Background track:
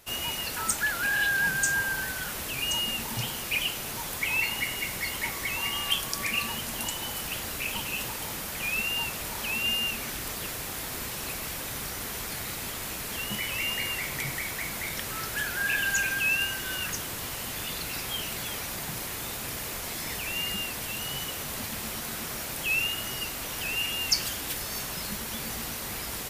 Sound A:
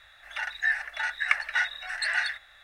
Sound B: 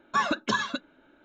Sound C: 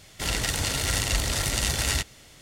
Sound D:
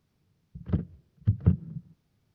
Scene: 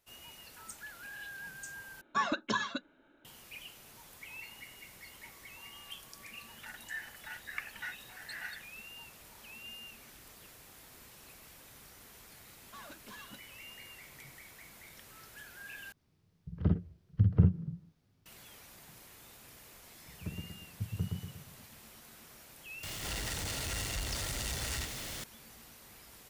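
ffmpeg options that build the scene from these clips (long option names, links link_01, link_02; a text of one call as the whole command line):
ffmpeg -i bed.wav -i cue0.wav -i cue1.wav -i cue2.wav -i cue3.wav -filter_complex "[2:a]asplit=2[link_01][link_02];[4:a]asplit=2[link_03][link_04];[0:a]volume=-20dB[link_05];[link_02]asoftclip=type=tanh:threshold=-31dB[link_06];[link_03]aecho=1:1:48|59:0.631|0.355[link_07];[link_04]aecho=1:1:118|236|354|472|590|708:0.708|0.326|0.15|0.0689|0.0317|0.0146[link_08];[3:a]aeval=exprs='val(0)+0.5*0.1*sgn(val(0))':channel_layout=same[link_09];[link_05]asplit=3[link_10][link_11][link_12];[link_10]atrim=end=2.014[link_13];[link_01]atrim=end=1.24,asetpts=PTS-STARTPTS,volume=-6dB[link_14];[link_11]atrim=start=3.246:end=15.924[link_15];[link_07]atrim=end=2.34,asetpts=PTS-STARTPTS,volume=-2.5dB[link_16];[link_12]atrim=start=18.256[link_17];[1:a]atrim=end=2.63,asetpts=PTS-STARTPTS,volume=-16dB,afade=type=in:duration=0.004:curve=hsin,afade=type=out:start_time=2.626:duration=0.004:curve=hsin,adelay=6270[link_18];[link_06]atrim=end=1.24,asetpts=PTS-STARTPTS,volume=-16.5dB,afade=type=in:duration=0.004:curve=hsin,afade=type=out:start_time=1.236:duration=0.004:curve=hsin,adelay=12590[link_19];[link_08]atrim=end=2.34,asetpts=PTS-STARTPTS,volume=-14dB,afade=type=in:duration=0.004:curve=hsin,afade=type=out:start_time=2.336:duration=0.004:curve=hsin,adelay=19530[link_20];[link_09]atrim=end=2.41,asetpts=PTS-STARTPTS,volume=-16.5dB,afade=type=in:duration=0.004:curve=hsin,afade=type=out:start_time=2.406:duration=0.004:curve=hsin,adelay=22830[link_21];[link_13][link_14]acrossfade=duration=0.004:curve1=hsin:curve2=hsin[link_22];[link_22][link_15]acrossfade=duration=0.004:curve1=hsin:curve2=hsin[link_23];[link_23][link_16]acrossfade=duration=0.004:curve1=hsin:curve2=hsin[link_24];[link_24][link_17]acrossfade=duration=0.004:curve1=hsin:curve2=hsin[link_25];[link_25][link_18][link_19][link_20][link_21]amix=inputs=5:normalize=0" out.wav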